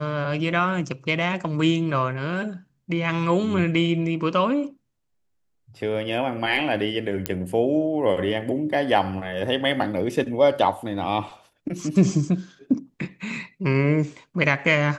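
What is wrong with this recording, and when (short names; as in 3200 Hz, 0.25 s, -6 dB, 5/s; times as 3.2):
7.26 pop -6 dBFS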